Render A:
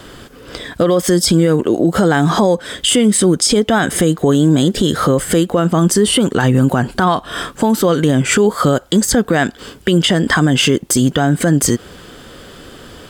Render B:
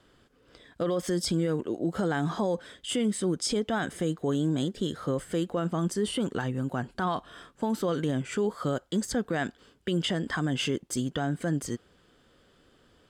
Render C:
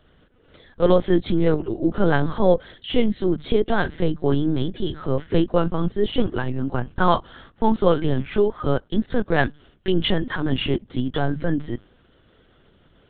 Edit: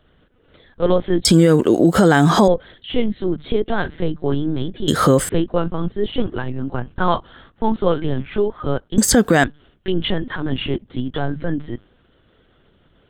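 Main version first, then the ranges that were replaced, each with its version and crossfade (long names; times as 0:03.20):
C
0:01.25–0:02.48: punch in from A
0:04.88–0:05.29: punch in from A
0:08.98–0:09.44: punch in from A
not used: B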